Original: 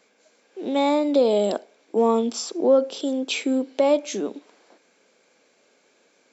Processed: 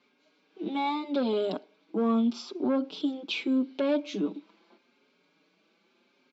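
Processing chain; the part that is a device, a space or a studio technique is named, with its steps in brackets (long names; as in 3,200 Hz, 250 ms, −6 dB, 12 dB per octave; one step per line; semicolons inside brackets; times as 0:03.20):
barber-pole flanger into a guitar amplifier (barber-pole flanger 5.2 ms +0.81 Hz; soft clipping −15 dBFS, distortion −17 dB; loudspeaker in its box 100–4,300 Hz, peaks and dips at 180 Hz +8 dB, 310 Hz +3 dB, 500 Hz −10 dB, 710 Hz −7 dB, 1,800 Hz −9 dB)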